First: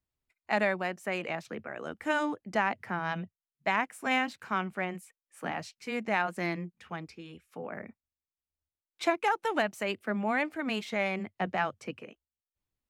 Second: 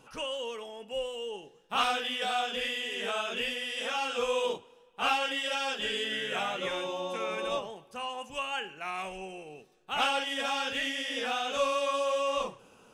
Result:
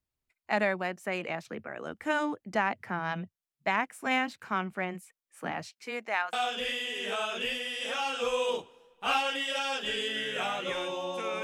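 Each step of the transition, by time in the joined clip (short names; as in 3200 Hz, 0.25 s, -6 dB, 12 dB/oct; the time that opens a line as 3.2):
first
5.69–6.33 HPF 170 Hz -> 1200 Hz
6.33 switch to second from 2.29 s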